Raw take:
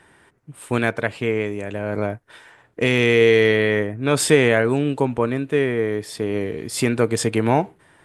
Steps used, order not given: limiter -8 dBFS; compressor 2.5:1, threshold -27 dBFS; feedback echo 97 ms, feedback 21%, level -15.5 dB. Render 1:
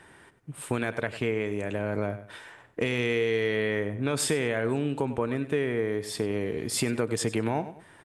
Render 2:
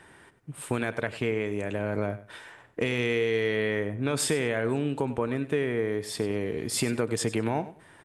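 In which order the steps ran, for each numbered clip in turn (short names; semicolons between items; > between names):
limiter > feedback echo > compressor; limiter > compressor > feedback echo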